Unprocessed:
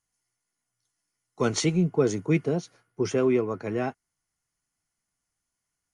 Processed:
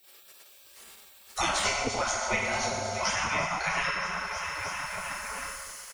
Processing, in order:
hum removal 171.2 Hz, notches 35
on a send: repeating echo 316 ms, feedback 56%, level −17.5 dB
on the sum: feedback delay network reverb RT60 1.3 s, low-frequency decay 1.5×, high-frequency decay 0.65×, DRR −5.5 dB
in parallel at −7 dB: soft clipping −13 dBFS, distortion −12 dB
on the sum: gate on every frequency bin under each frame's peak −20 dB weak
multiband upward and downward compressor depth 100%
level +2.5 dB

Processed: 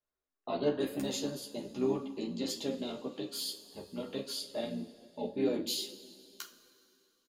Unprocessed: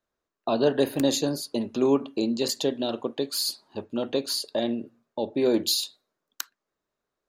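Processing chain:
pitch-shifted copies added −5 semitones −8 dB
coupled-rooms reverb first 0.29 s, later 2.8 s, from −18 dB, DRR 3.5 dB
multi-voice chorus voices 6, 0.76 Hz, delay 13 ms, depth 2.8 ms
level −9 dB

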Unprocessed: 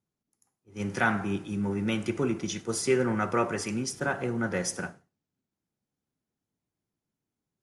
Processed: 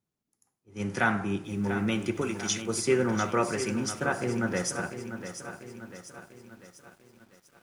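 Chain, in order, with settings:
0:02.21–0:02.62: spectral tilt +3 dB per octave
feedback echo at a low word length 694 ms, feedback 55%, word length 9 bits, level −10 dB

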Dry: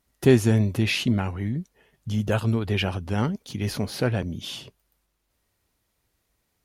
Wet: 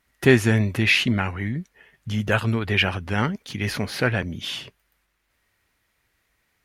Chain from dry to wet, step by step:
parametric band 1,900 Hz +11.5 dB 1.4 octaves

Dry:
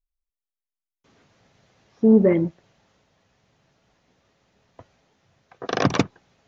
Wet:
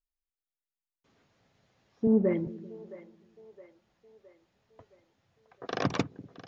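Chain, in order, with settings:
notch filter 6,000 Hz, Q 17
echo with a time of its own for lows and highs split 430 Hz, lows 194 ms, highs 666 ms, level −16 dB
0:02.07–0:02.47: multiband upward and downward expander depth 40%
level −9 dB

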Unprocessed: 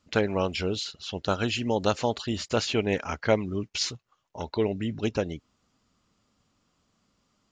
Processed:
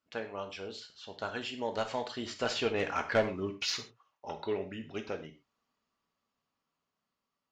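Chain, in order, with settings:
source passing by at 0:03.27, 17 m/s, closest 13 metres
high-shelf EQ 3,400 Hz −9.5 dB
mid-hump overdrive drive 17 dB, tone 8,000 Hz, clips at −8.5 dBFS
reverb whose tail is shaped and stops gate 150 ms falling, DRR 5 dB
level −8.5 dB

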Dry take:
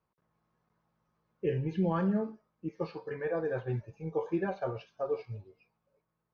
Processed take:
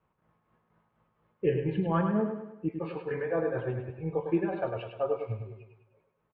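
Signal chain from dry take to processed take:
Butterworth low-pass 3,300 Hz 36 dB per octave
in parallel at 0 dB: downward compressor, threshold −39 dBFS, peak gain reduction 13.5 dB
on the sum: shaped tremolo triangle 4.2 Hz, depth 70%
repeating echo 102 ms, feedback 47%, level −6.5 dB
level +3 dB

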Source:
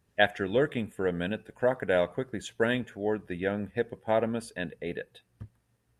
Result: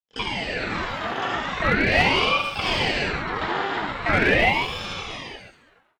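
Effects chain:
reversed piece by piece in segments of 47 ms
parametric band 7,100 Hz −14 dB 2.4 octaves
noise gate with hold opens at −55 dBFS
automatic gain control gain up to 13 dB
high-pass filter 740 Hz 24 dB per octave
repeating echo 128 ms, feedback 18%, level −7 dB
pitch-shifted copies added −5 semitones −9 dB, +4 semitones −15 dB, +12 semitones −1 dB
high-shelf EQ 2,600 Hz −12 dB
comb filter 3.2 ms, depth 34%
reverb whose tail is shaped and stops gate 370 ms flat, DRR −6 dB
asymmetric clip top −11 dBFS
ring modulator whose carrier an LFO sweeps 1,000 Hz, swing 80%, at 0.41 Hz

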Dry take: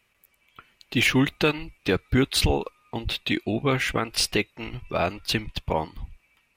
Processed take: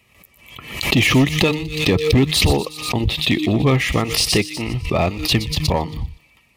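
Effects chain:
high-pass filter 68 Hz 12 dB per octave
low-shelf EQ 200 Hz +10 dB
hum removal 153.3 Hz, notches 3
in parallel at −0.5 dB: downward compressor 4 to 1, threshold −33 dBFS, peak gain reduction 17.5 dB
on the sum: hard clipping −12.5 dBFS, distortion −14 dB
Butterworth band-reject 1,500 Hz, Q 4.1
on a send: delay with a high-pass on its return 121 ms, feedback 48%, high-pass 3,500 Hz, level −9 dB
on the sum: background raised ahead of every attack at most 78 dB per second
level +3 dB

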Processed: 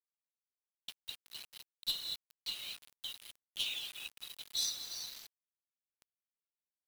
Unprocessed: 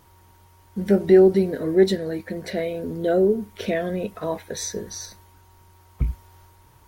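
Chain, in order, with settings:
brickwall limiter −14.5 dBFS, peak gain reduction 9 dB
Butterworth high-pass 2,800 Hz 72 dB per octave
high-frequency loss of the air 430 metres
reverb whose tail is shaped and stops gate 270 ms flat, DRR 2.5 dB
tube saturation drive 43 dB, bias 0.25
reverb reduction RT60 0.83 s
high-shelf EQ 4,900 Hz +4.5 dB, from 0:02.82 +12 dB, from 0:04.76 +3.5 dB
bit reduction 10 bits
level +13 dB

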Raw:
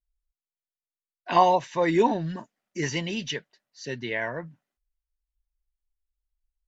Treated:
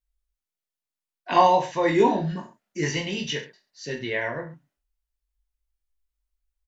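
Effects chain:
reverse bouncing-ball delay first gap 20 ms, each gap 1.15×, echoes 5

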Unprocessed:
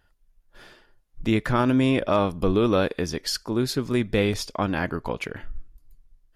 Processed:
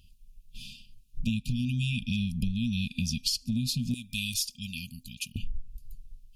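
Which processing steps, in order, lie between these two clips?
brick-wall band-stop 250–2,400 Hz
0:03.94–0:05.36: first-order pre-emphasis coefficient 0.9
downward compressor 10 to 1, threshold −35 dBFS, peak gain reduction 16 dB
level +9 dB

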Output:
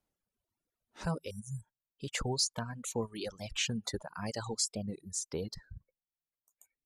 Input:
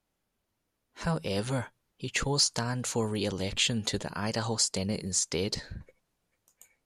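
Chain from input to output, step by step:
0:01.33–0:01.65: healed spectral selection 220–5,500 Hz after
reverb reduction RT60 1.1 s
parametric band 2,700 Hz −3.5 dB 2.3 octaves, from 0:04.76 −12 dB
reverb reduction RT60 1.9 s
wow of a warped record 45 rpm, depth 160 cents
level −3.5 dB

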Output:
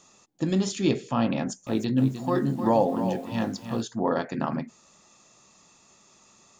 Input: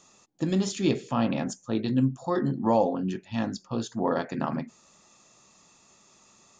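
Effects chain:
0:01.36–0:03.82: feedback echo at a low word length 306 ms, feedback 35%, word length 8 bits, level −9 dB
level +1 dB

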